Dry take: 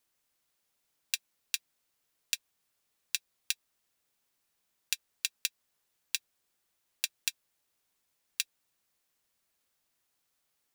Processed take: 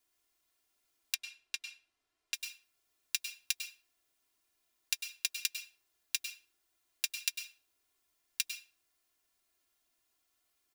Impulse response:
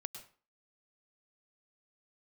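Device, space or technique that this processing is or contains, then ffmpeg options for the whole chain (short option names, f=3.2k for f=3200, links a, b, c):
microphone above a desk: -filter_complex "[0:a]aecho=1:1:2.9:0.89[a];[1:a]atrim=start_sample=2205[b];[a][b]afir=irnorm=-1:irlink=0,asettb=1/sr,asplit=3[c][d][e];[c]atrim=end=1.144[f];[d]atrim=start=1.14:end=2.34,asetpts=PTS-STARTPTS,afade=t=in:d=0.004:c=qsin,afade=t=out:st=1.196:d=0.004:c=qsin,aemphasis=mode=reproduction:type=50fm[g];[e]atrim=start=2.336[h];[f][g]acrossfade=d=0.004:c1=hsin:c2=qsin[i];[i][h]acrossfade=d=0.004:c1=qsin:c2=hsin"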